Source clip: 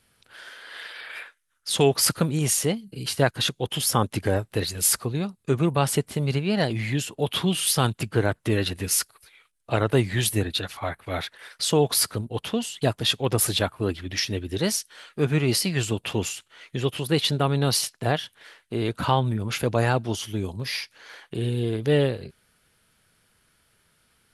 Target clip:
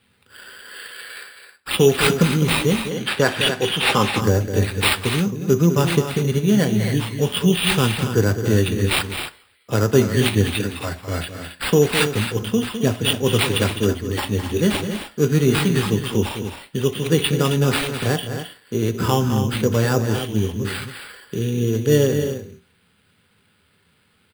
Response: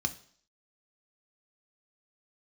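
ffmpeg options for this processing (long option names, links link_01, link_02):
-filter_complex "[1:a]atrim=start_sample=2205,asetrate=61740,aresample=44100[link_01];[0:a][link_01]afir=irnorm=-1:irlink=0,acrusher=samples=7:mix=1:aa=0.000001,aecho=1:1:207|268.2:0.316|0.316,asettb=1/sr,asplit=3[link_02][link_03][link_04];[link_02]atrim=end=2.914[link_05];[link_03]atrim=start=2.91:end=4.21,asetpts=PTS-STARTPTS,afade=type=in:duration=0.004:curve=qsin,afade=type=out:start_time=1.296:duration=0.004:curve=qsin,asplit=2[link_06][link_07];[link_07]highpass=frequency=720:poles=1,volume=11dB,asoftclip=type=tanh:threshold=-4dB[link_08];[link_06][link_08]amix=inputs=2:normalize=0,lowpass=frequency=4300:poles=1,volume=-6dB[link_09];[link_04]atrim=start=4.206[link_10];[link_05][link_09]acrossfade=duration=0.004:curve1=hsin:curve2=qsin[link_11];[link_11][link_10]acrossfade=duration=0.004:curve1=qsin:curve2=hsin"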